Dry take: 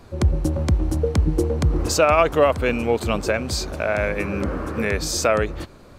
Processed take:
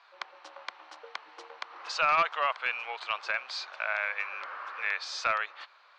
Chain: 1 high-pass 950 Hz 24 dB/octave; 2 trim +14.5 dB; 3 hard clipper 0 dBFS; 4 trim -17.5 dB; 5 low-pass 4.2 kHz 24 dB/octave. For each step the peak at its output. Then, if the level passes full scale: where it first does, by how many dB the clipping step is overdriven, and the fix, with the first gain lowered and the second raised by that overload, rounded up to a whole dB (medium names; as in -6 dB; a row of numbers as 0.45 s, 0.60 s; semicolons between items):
-7.5 dBFS, +7.0 dBFS, 0.0 dBFS, -17.5 dBFS, -16.0 dBFS; step 2, 7.0 dB; step 2 +7.5 dB, step 4 -10.5 dB